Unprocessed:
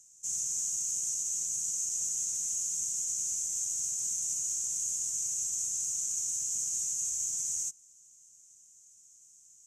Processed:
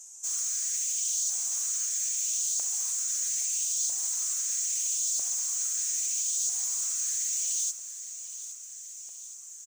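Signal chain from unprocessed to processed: comb 6.9 ms, depth 79%; in parallel at -3 dB: peak limiter -29 dBFS, peak gain reduction 10 dB; on the sum: saturation -32.5 dBFS, distortion -9 dB; flange 0.24 Hz, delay 2.9 ms, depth 7.5 ms, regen +42%; LFO high-pass saw up 0.77 Hz 690–4100 Hz; thinning echo 819 ms, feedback 57%, high-pass 190 Hz, level -13 dB; trim +8 dB

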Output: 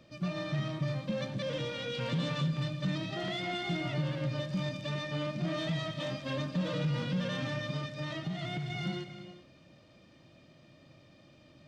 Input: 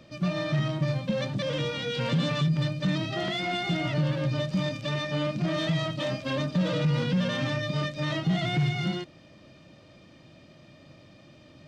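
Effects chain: 7.76–8.70 s: compression, threshold -27 dBFS, peak gain reduction 6 dB; gated-style reverb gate 430 ms flat, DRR 9.5 dB; trim -6.5 dB

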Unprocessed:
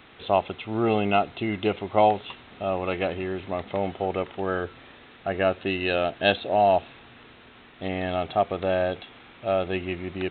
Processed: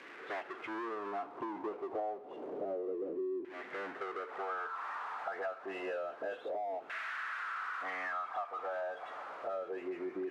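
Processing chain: delay that grows with frequency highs late, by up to 117 ms; in parallel at -3 dB: word length cut 6-bit, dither triangular; on the sum: spectral noise reduction 8 dB; band-pass sweep 350 Hz -> 1.3 kHz, 4.11–4.83 s; power-law waveshaper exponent 0.5; LFO band-pass saw down 0.29 Hz 350–2000 Hz; simulated room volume 2000 m³, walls furnished, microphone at 0.38 m; compression 8:1, threshold -38 dBFS, peak gain reduction 18.5 dB; trim +2 dB

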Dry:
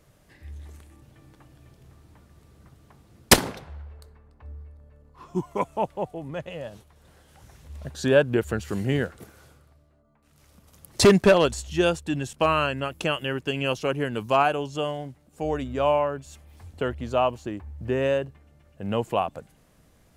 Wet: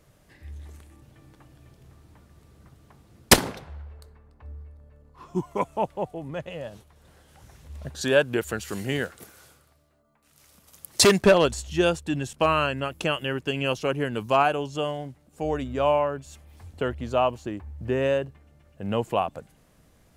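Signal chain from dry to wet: 8.01–11.19 s: tilt EQ +2 dB/octave

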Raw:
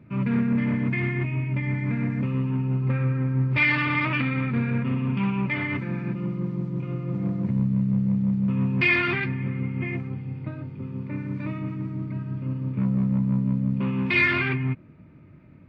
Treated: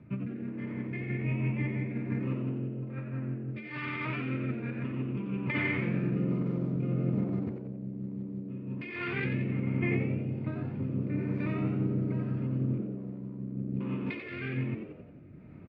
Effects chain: low-pass 3.9 kHz 6 dB/octave; compressor with a negative ratio -28 dBFS, ratio -0.5; rotary cabinet horn 1.2 Hz; on a send: frequency-shifting echo 89 ms, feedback 45%, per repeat +89 Hz, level -7.5 dB; on the sum: trim -3 dB

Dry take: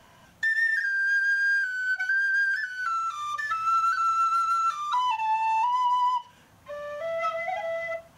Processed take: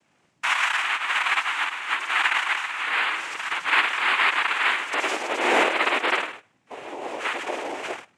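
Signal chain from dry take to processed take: flutter echo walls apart 8.7 m, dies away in 0.58 s; gate -39 dBFS, range -12 dB; noise-vocoded speech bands 4

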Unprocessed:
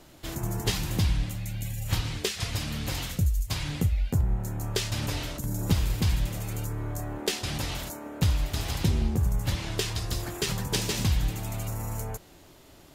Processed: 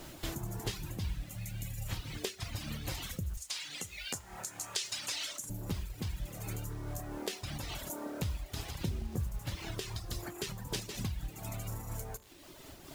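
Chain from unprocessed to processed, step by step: 3.37–5.50 s: frequency weighting ITU-R 468; reverb removal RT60 0.88 s; compression 3:1, threshold -44 dBFS, peak gain reduction 19.5 dB; bit crusher 10-bit; reverberation, pre-delay 3 ms, DRR 17 dB; random flutter of the level, depth 65%; trim +7.5 dB

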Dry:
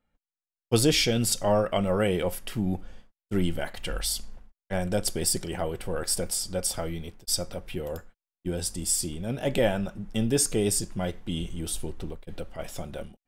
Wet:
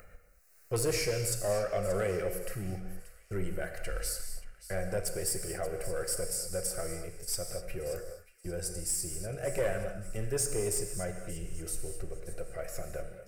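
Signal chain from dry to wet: upward compressor, threshold -27 dBFS; static phaser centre 920 Hz, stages 6; saturation -19.5 dBFS, distortion -18 dB; on a send: feedback echo behind a high-pass 580 ms, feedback 41%, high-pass 2 kHz, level -14 dB; on the sum: gated-style reverb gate 270 ms flat, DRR 5.5 dB; trim -3.5 dB

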